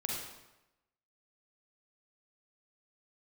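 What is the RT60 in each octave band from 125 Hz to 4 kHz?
1.0 s, 0.95 s, 0.95 s, 0.95 s, 0.90 s, 0.80 s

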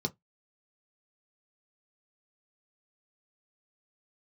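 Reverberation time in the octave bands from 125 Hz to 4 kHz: 0.15 s, 0.15 s, 0.15 s, 0.15 s, 0.15 s, 0.10 s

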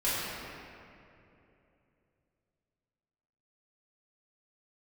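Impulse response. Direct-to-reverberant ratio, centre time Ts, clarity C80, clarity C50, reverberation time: -12.0 dB, 174 ms, -1.5 dB, -3.5 dB, 2.8 s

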